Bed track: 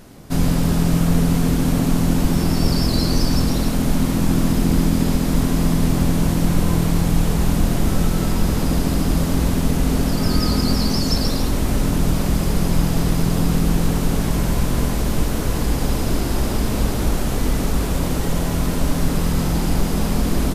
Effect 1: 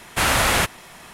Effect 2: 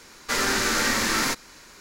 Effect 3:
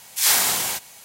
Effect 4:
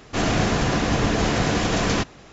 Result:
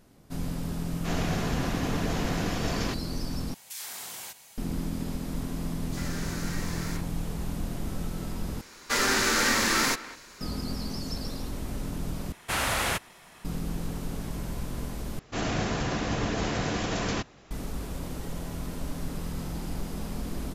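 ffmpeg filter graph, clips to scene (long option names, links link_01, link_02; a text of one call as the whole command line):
ffmpeg -i bed.wav -i cue0.wav -i cue1.wav -i cue2.wav -i cue3.wav -filter_complex "[4:a]asplit=2[link_01][link_02];[2:a]asplit=2[link_03][link_04];[0:a]volume=-15dB[link_05];[3:a]acompressor=threshold=-29dB:ratio=6:attack=3.2:release=140:knee=1:detection=peak[link_06];[link_03]acrossover=split=1000|3100[link_07][link_08][link_09];[link_08]adelay=40[link_10];[link_07]adelay=100[link_11];[link_11][link_10][link_09]amix=inputs=3:normalize=0[link_12];[link_04]asplit=2[link_13][link_14];[link_14]adelay=200,highpass=300,lowpass=3400,asoftclip=type=hard:threshold=-18.5dB,volume=-15dB[link_15];[link_13][link_15]amix=inputs=2:normalize=0[link_16];[link_05]asplit=5[link_17][link_18][link_19][link_20][link_21];[link_17]atrim=end=3.544[link_22];[link_06]atrim=end=1.04,asetpts=PTS-STARTPTS,volume=-7.5dB[link_23];[link_18]atrim=start=4.576:end=8.614[link_24];[link_16]atrim=end=1.8,asetpts=PTS-STARTPTS,volume=-1dB[link_25];[link_19]atrim=start=10.406:end=12.324[link_26];[1:a]atrim=end=1.13,asetpts=PTS-STARTPTS,volume=-9dB[link_27];[link_20]atrim=start=13.446:end=15.194[link_28];[link_02]atrim=end=2.32,asetpts=PTS-STARTPTS,volume=-8dB[link_29];[link_21]atrim=start=17.506[link_30];[link_01]atrim=end=2.32,asetpts=PTS-STARTPTS,volume=-10dB,afade=type=in:duration=0.004:curve=hsin,afade=type=out:start_time=2.316:duration=0.004:curve=hsin,adelay=910[link_31];[link_12]atrim=end=1.8,asetpts=PTS-STARTPTS,volume=-15dB,afade=type=in:duration=0.004:curve=hsin,afade=type=out:start_time=1.796:duration=0.004:curve=hsin,adelay=5630[link_32];[link_22][link_23]acrossfade=duration=0.004:curve1=hsin:curve2=hsin[link_33];[link_33][link_24]acrossfade=duration=0.004:curve1=hsin:curve2=hsin[link_34];[link_34][link_25]acrossfade=duration=0.004:curve1=hsin:curve2=hsin[link_35];[link_35][link_26]acrossfade=duration=0.004:curve1=hsin:curve2=hsin[link_36];[link_36][link_27]acrossfade=duration=0.004:curve1=hsin:curve2=hsin[link_37];[link_37][link_28]acrossfade=duration=0.004:curve1=hsin:curve2=hsin[link_38];[link_38][link_29]acrossfade=duration=0.004:curve1=hsin:curve2=hsin[link_39];[link_39][link_30]acrossfade=duration=0.004:curve1=hsin:curve2=hsin[link_40];[link_40][link_31][link_32]amix=inputs=3:normalize=0" out.wav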